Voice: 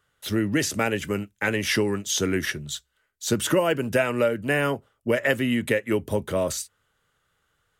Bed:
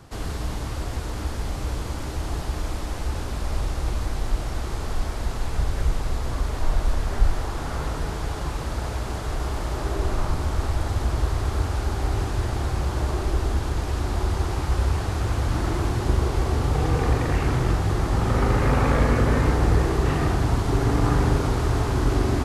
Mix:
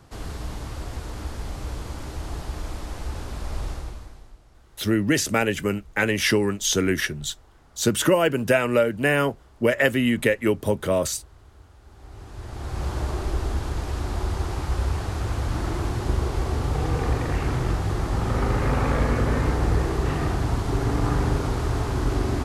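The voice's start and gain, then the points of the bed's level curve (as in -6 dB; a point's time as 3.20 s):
4.55 s, +2.5 dB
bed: 3.72 s -4 dB
4.40 s -26 dB
11.80 s -26 dB
12.85 s -2.5 dB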